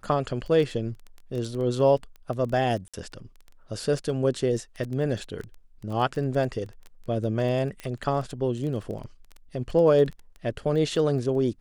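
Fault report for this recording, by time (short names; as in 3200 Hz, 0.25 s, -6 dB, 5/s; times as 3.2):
crackle 10/s -31 dBFS
2.88–2.94 gap 56 ms
7.8 pop -22 dBFS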